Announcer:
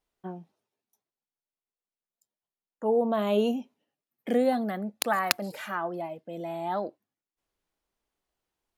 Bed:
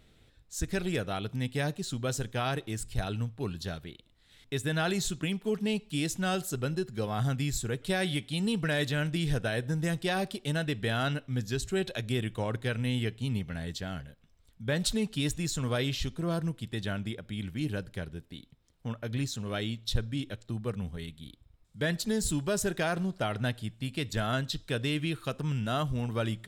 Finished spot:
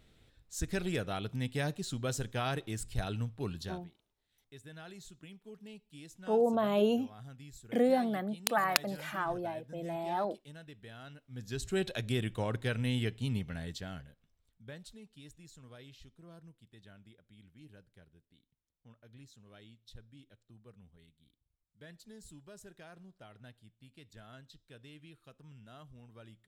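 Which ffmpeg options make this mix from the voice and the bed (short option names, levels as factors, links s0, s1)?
-filter_complex "[0:a]adelay=3450,volume=0.708[s0];[1:a]volume=5.62,afade=t=out:st=3.59:d=0.3:silence=0.141254,afade=t=in:st=11.28:d=0.49:silence=0.125893,afade=t=out:st=13.25:d=1.61:silence=0.0891251[s1];[s0][s1]amix=inputs=2:normalize=0"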